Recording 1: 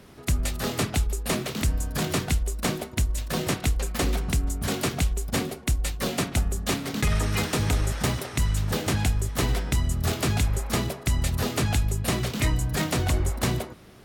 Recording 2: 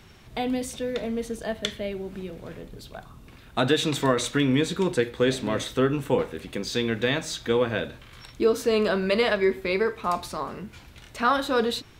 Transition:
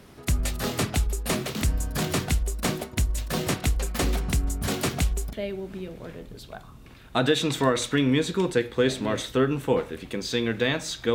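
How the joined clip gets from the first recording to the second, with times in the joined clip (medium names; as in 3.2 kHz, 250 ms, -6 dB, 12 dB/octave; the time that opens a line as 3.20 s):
recording 1
5.33 s: go over to recording 2 from 1.75 s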